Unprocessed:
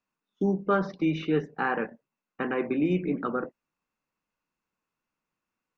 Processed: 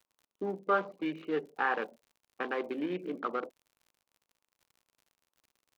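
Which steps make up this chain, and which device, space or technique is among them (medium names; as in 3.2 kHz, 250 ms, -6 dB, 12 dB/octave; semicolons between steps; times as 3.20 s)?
local Wiener filter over 25 samples; Bessel high-pass 570 Hz, order 2; lo-fi chain (low-pass 4.4 kHz 12 dB/octave; wow and flutter 26 cents; crackle 63 per s -52 dBFS)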